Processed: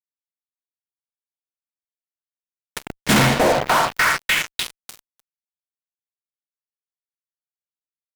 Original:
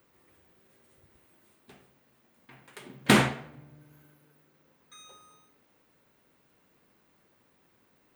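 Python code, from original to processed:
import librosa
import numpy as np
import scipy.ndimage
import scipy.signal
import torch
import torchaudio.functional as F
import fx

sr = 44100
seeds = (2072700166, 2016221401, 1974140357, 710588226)

y = fx.notch_comb(x, sr, f0_hz=400.0)
y = fx.echo_stepped(y, sr, ms=299, hz=580.0, octaves=0.7, feedback_pct=70, wet_db=0.0)
y = fx.fuzz(y, sr, gain_db=43.0, gate_db=-41.0)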